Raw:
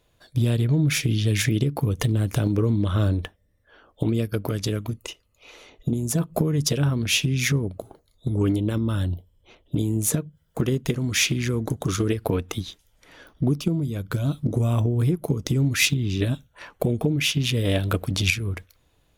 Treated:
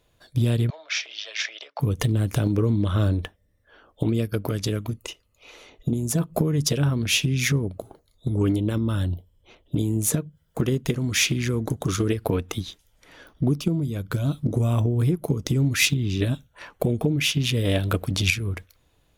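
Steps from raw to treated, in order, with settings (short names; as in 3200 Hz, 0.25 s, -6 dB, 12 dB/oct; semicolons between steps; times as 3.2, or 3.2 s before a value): 0.7–1.8 Chebyshev band-pass 610–5800 Hz, order 4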